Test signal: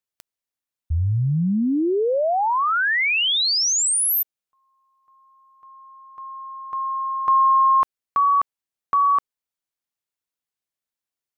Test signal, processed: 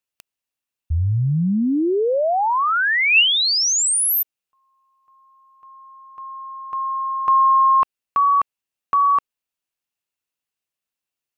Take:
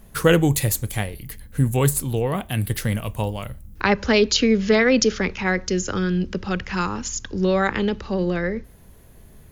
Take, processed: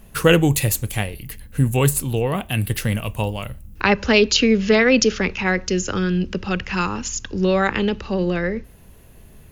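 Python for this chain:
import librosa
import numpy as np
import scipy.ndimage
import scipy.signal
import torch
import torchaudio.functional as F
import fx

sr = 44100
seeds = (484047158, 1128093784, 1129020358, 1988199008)

y = fx.peak_eq(x, sr, hz=2700.0, db=7.5, octaves=0.22)
y = F.gain(torch.from_numpy(y), 1.5).numpy()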